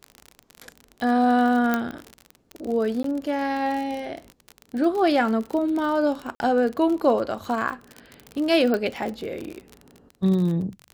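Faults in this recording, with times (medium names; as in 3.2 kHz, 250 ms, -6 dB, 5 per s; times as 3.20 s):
crackle 41 per s -28 dBFS
1.74 s: pop -9 dBFS
3.03–3.04 s: dropout 13 ms
6.35–6.40 s: dropout 51 ms
8.74 s: pop -13 dBFS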